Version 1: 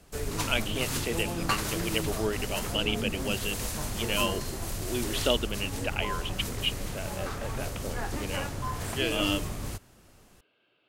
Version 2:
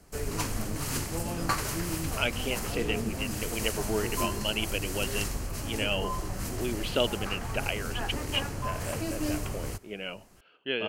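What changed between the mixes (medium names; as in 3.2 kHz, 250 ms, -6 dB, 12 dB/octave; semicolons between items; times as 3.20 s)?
speech: entry +1.70 s; master: add peaking EQ 3.6 kHz -8.5 dB 0.22 oct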